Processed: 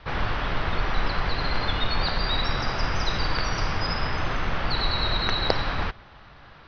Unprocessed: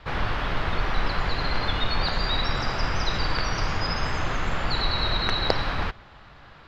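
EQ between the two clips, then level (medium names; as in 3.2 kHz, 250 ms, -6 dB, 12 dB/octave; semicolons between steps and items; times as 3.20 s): brick-wall FIR low-pass 6.2 kHz; 0.0 dB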